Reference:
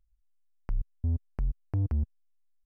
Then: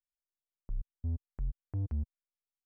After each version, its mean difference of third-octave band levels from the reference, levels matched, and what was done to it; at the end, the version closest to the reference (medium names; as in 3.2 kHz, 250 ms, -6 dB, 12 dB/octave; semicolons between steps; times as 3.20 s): 1.5 dB: level-controlled noise filter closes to 560 Hz, open at -27 dBFS; upward expansion 2.5:1, over -47 dBFS; trim -5 dB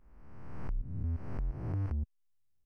5.5 dB: reverse spectral sustain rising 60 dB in 1.23 s; in parallel at -1.5 dB: compression, threshold -41 dBFS, peak gain reduction 16.5 dB; on the sum: trim -7.5 dB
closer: first